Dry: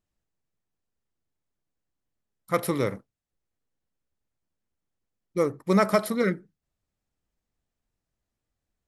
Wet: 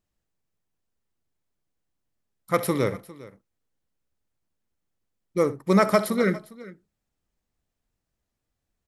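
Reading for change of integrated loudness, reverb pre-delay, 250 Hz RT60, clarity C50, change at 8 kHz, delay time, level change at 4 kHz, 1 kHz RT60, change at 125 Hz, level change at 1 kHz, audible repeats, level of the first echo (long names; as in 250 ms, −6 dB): +2.0 dB, no reverb audible, no reverb audible, no reverb audible, +2.0 dB, 64 ms, +2.0 dB, no reverb audible, +2.0 dB, +2.0 dB, 2, −16.5 dB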